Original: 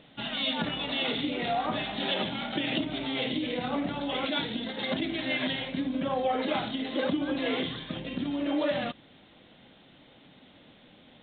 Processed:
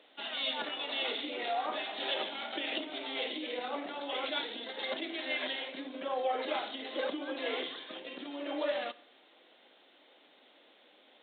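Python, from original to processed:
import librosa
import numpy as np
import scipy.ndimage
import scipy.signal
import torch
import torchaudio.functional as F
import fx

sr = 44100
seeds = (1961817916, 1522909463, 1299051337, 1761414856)

y = scipy.signal.sosfilt(scipy.signal.butter(4, 350.0, 'highpass', fs=sr, output='sos'), x)
y = fx.rev_schroeder(y, sr, rt60_s=0.79, comb_ms=26, drr_db=19.0)
y = F.gain(torch.from_numpy(y), -4.0).numpy()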